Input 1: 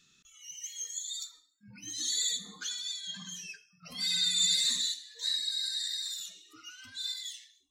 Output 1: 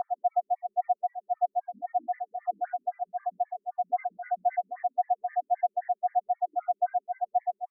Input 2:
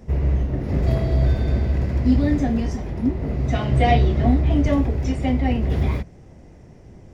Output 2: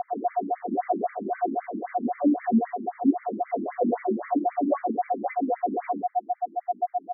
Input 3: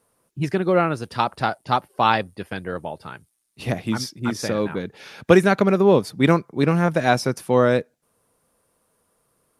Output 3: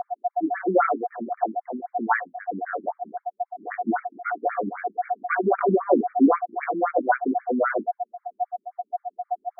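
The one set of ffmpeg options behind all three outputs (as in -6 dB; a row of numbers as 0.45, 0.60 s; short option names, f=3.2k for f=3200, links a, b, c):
-af "acontrast=55,aeval=exprs='val(0)+0.141*sin(2*PI*720*n/s)':c=same,flanger=delay=17:depth=4.9:speed=0.93,afftfilt=real='re*between(b*sr/1024,250*pow(1700/250,0.5+0.5*sin(2*PI*3.8*pts/sr))/1.41,250*pow(1700/250,0.5+0.5*sin(2*PI*3.8*pts/sr))*1.41)':imag='im*between(b*sr/1024,250*pow(1700/250,0.5+0.5*sin(2*PI*3.8*pts/sr))/1.41,250*pow(1700/250,0.5+0.5*sin(2*PI*3.8*pts/sr))*1.41)':win_size=1024:overlap=0.75"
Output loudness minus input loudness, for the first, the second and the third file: 0.0, -6.5, -5.0 LU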